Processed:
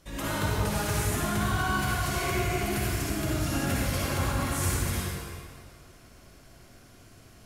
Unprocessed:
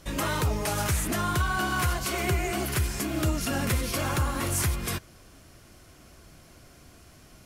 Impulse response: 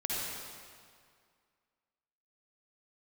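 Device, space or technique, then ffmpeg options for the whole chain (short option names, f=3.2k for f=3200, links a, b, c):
stairwell: -filter_complex "[1:a]atrim=start_sample=2205[a];[0:a][a]afir=irnorm=-1:irlink=0,volume=-6.5dB"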